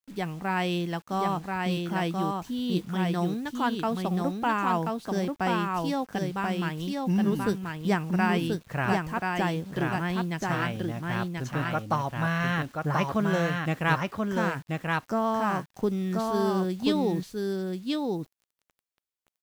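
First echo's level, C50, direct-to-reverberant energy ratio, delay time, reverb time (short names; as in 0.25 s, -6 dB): -3.0 dB, none, none, 1.033 s, none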